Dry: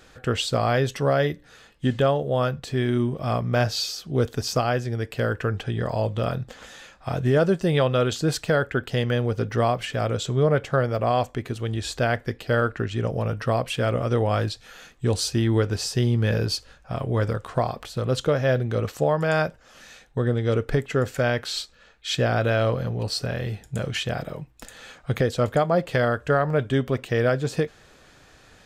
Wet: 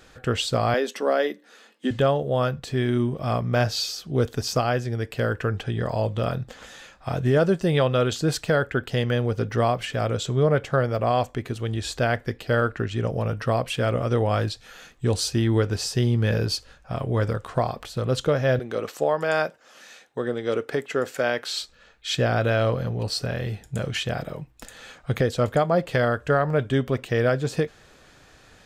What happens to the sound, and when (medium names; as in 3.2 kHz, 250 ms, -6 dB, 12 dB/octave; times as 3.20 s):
0.74–1.91 s: elliptic high-pass 210 Hz
18.59–21.61 s: high-pass 280 Hz